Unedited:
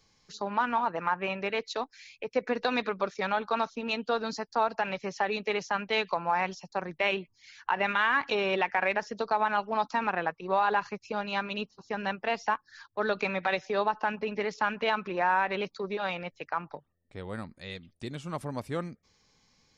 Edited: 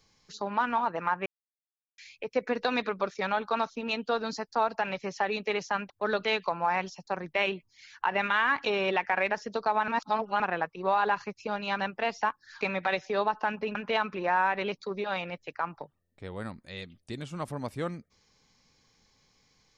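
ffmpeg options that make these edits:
-filter_complex "[0:a]asplit=10[a][b][c][d][e][f][g][h][i][j];[a]atrim=end=1.26,asetpts=PTS-STARTPTS,afade=t=out:st=1.256:d=0.004:c=hsin[k];[b]atrim=start=1.26:end=1.98,asetpts=PTS-STARTPTS,volume=0[l];[c]atrim=start=1.98:end=5.902,asetpts=PTS-STARTPTS,afade=t=in:d=0.004:c=hsin[m];[d]atrim=start=12.858:end=13.212[n];[e]atrim=start=5.898:end=9.532[o];[f]atrim=start=9.528:end=10.052,asetpts=PTS-STARTPTS,areverse[p];[g]atrim=start=10.048:end=11.442[q];[h]atrim=start=12.038:end=12.862[r];[i]atrim=start=13.208:end=14.352[s];[j]atrim=start=14.678[t];[k][l][m]concat=n=3:v=0:a=1[u];[u][n]acrossfade=d=0.004:c1=hsin:c2=hsin[v];[v][o]acrossfade=d=0.004:c1=hsin:c2=hsin[w];[w][p]acrossfade=d=0.004:c1=hsin:c2=hsin[x];[x][q]acrossfade=d=0.004:c1=hsin:c2=hsin[y];[y][r]acrossfade=d=0.004:c1=hsin:c2=hsin[z];[z][s]acrossfade=d=0.004:c1=hsin:c2=hsin[aa];[aa][t]acrossfade=d=0.004:c1=hsin:c2=hsin"

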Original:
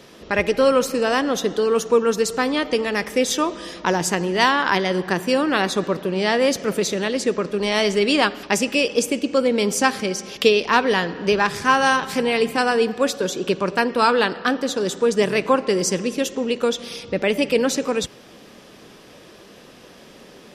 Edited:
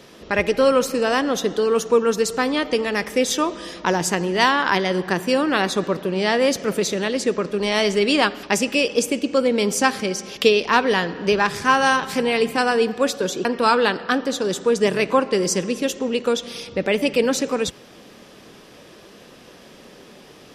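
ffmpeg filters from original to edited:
-filter_complex "[0:a]asplit=2[a][b];[a]atrim=end=13.452[c];[b]atrim=start=13.808[d];[c][d]acrossfade=d=0.004:c1=hsin:c2=hsin"

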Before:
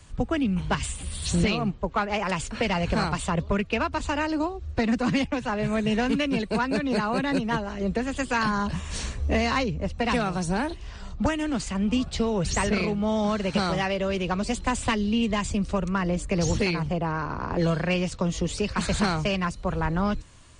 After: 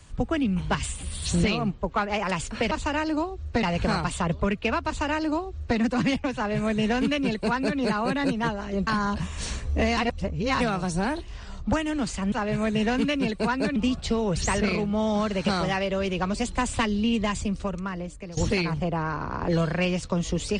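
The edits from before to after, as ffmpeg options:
-filter_complex "[0:a]asplit=9[a][b][c][d][e][f][g][h][i];[a]atrim=end=2.712[j];[b]atrim=start=3.938:end=4.862[k];[c]atrim=start=2.708:end=7.952[l];[d]atrim=start=8.398:end=9.502[m];[e]atrim=start=9.498:end=10.132,asetpts=PTS-STARTPTS,areverse[n];[f]atrim=start=10.128:end=11.852[o];[g]atrim=start=5.428:end=6.872[p];[h]atrim=start=11.848:end=16.46,asetpts=PTS-STARTPTS,afade=t=out:st=3.492:d=1.12:silence=0.133352[q];[i]atrim=start=16.46,asetpts=PTS-STARTPTS,afade=t=in:d=0.004:c=hsin:silence=0.133352[r];[j][k]acrossfade=d=0.004:c1=hsin:c2=hsin[s];[s][l]acrossfade=d=0.004:c1=hsin:c2=hsin[t];[t][m]acrossfade=d=0.004:c1=hsin:c2=hsin[u];[u][n]acrossfade=d=0.004:c1=hsin:c2=hsin[v];[v][o]acrossfade=d=0.004:c1=hsin:c2=hsin[w];[w][p]acrossfade=d=0.004:c1=hsin:c2=hsin[x];[q][r]concat=n=2:v=0:a=1[y];[x][y]acrossfade=d=0.004:c1=hsin:c2=hsin"

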